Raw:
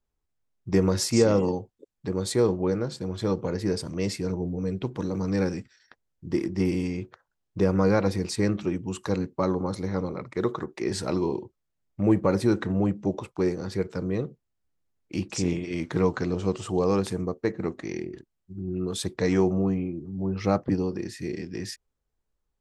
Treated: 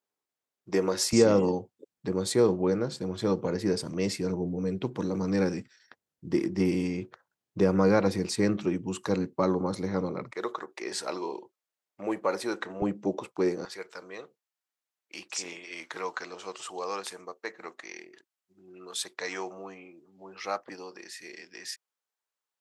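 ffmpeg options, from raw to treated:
ffmpeg -i in.wav -af "asetnsamples=nb_out_samples=441:pad=0,asendcmd='1.13 highpass f 140;10.31 highpass f 580;12.82 highpass f 250;13.65 highpass f 900',highpass=350" out.wav

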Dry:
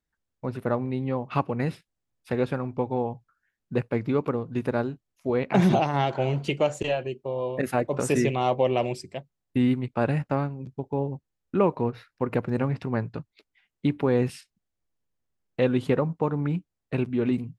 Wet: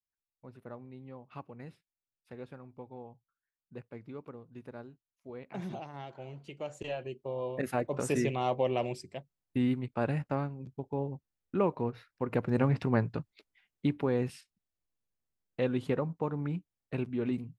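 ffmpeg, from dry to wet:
ffmpeg -i in.wav -af "volume=0.5dB,afade=type=in:start_time=6.53:duration=0.74:silence=0.223872,afade=type=in:start_time=12.25:duration=0.54:silence=0.446684,afade=type=out:start_time=12.79:duration=1.39:silence=0.398107" out.wav

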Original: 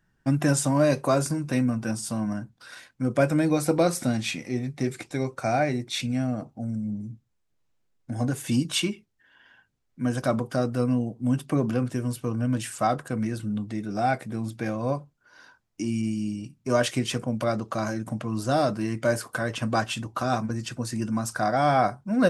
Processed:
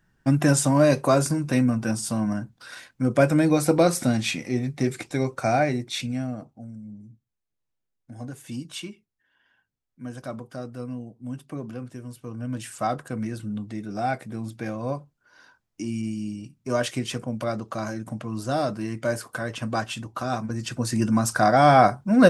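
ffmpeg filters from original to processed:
ffmpeg -i in.wav -af "volume=19dB,afade=type=out:start_time=5.45:duration=1.27:silence=0.223872,afade=type=in:start_time=12.17:duration=0.71:silence=0.398107,afade=type=in:start_time=20.43:duration=0.58:silence=0.398107" out.wav

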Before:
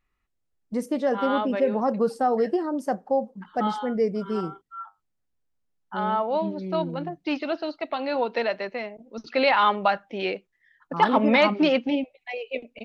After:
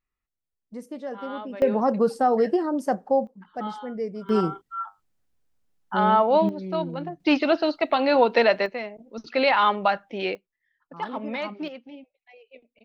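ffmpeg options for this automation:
ffmpeg -i in.wav -af "asetnsamples=nb_out_samples=441:pad=0,asendcmd='1.62 volume volume 2dB;3.27 volume volume -6.5dB;4.29 volume volume 6dB;6.49 volume volume -1dB;7.2 volume volume 7dB;8.66 volume volume 0dB;10.35 volume volume -12dB;11.68 volume volume -18.5dB',volume=-10dB" out.wav

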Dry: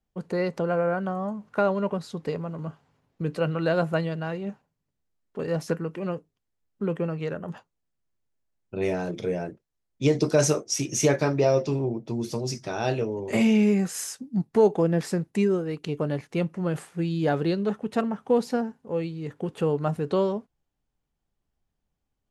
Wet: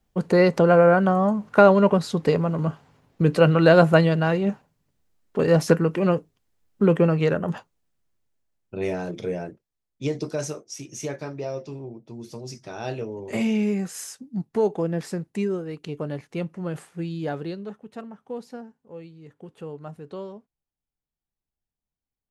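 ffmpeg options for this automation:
ffmpeg -i in.wav -af "volume=16.5dB,afade=type=out:start_time=7.24:duration=1.54:silence=0.316228,afade=type=out:start_time=9.34:duration=1.2:silence=0.334965,afade=type=in:start_time=12.09:duration=1.19:silence=0.446684,afade=type=out:start_time=17.03:duration=0.79:silence=0.354813" out.wav

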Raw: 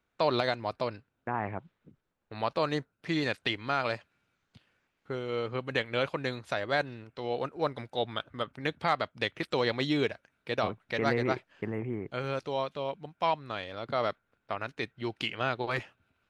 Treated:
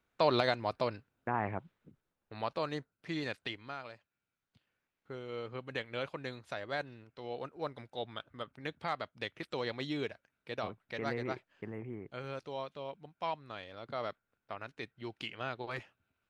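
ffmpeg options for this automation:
ffmpeg -i in.wav -af "volume=9.5dB,afade=type=out:start_time=1.55:duration=1.18:silence=0.473151,afade=type=out:start_time=3.33:duration=0.6:silence=0.266073,afade=type=in:start_time=3.93:duration=1.28:silence=0.298538" out.wav

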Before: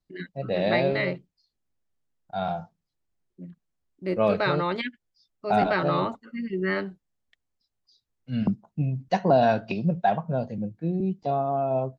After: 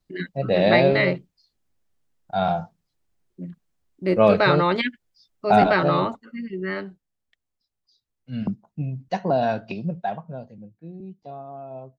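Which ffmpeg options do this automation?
ffmpeg -i in.wav -af "volume=6.5dB,afade=type=out:start_time=5.52:duration=1.02:silence=0.375837,afade=type=out:start_time=9.71:duration=0.86:silence=0.316228" out.wav

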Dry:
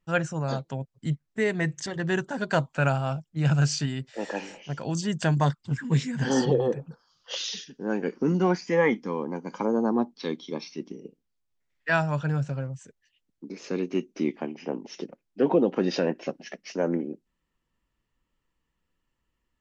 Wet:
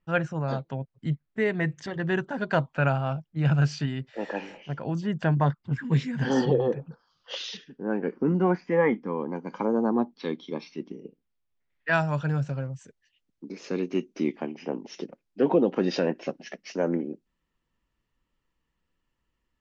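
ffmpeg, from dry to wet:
ffmpeg -i in.wav -af "asetnsamples=nb_out_samples=441:pad=0,asendcmd='4.74 lowpass f 2100;5.72 lowpass f 3800;7.57 lowpass f 1900;9.2 lowpass f 3500;11.93 lowpass f 6800',lowpass=3200" out.wav

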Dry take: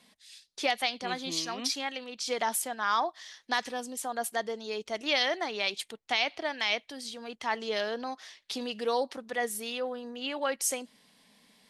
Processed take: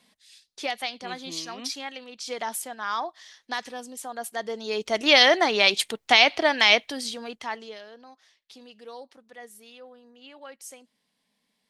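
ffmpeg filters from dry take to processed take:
ffmpeg -i in.wav -af "volume=11.5dB,afade=type=in:start_time=4.33:duration=0.9:silence=0.223872,afade=type=out:start_time=6.74:duration=0.74:silence=0.237137,afade=type=out:start_time=7.48:duration=0.31:silence=0.251189" out.wav

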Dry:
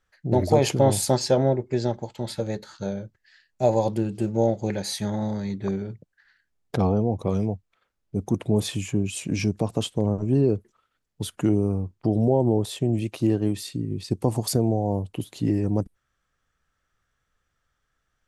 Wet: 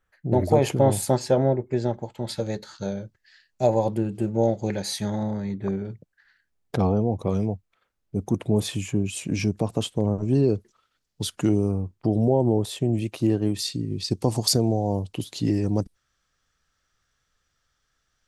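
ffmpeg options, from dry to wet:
ffmpeg -i in.wav -af "asetnsamples=nb_out_samples=441:pad=0,asendcmd='2.29 equalizer g 3;3.67 equalizer g -7;4.43 equalizer g 0.5;5.23 equalizer g -9.5;5.85 equalizer g -0.5;10.23 equalizer g 8.5;11.71 equalizer g 0.5;13.59 equalizer g 10',equalizer=frequency=5000:width_type=o:width=1.3:gain=-8" out.wav

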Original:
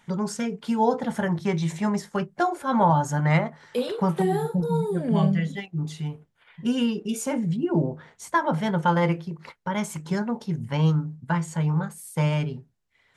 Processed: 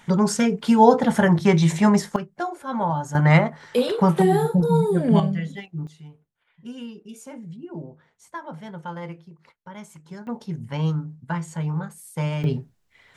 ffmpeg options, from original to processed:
ffmpeg -i in.wav -af "asetnsamples=nb_out_samples=441:pad=0,asendcmd='2.16 volume volume -4.5dB;3.15 volume volume 5.5dB;5.2 volume volume -2.5dB;5.87 volume volume -12.5dB;10.27 volume volume -2.5dB;12.44 volume volume 9dB',volume=8dB" out.wav

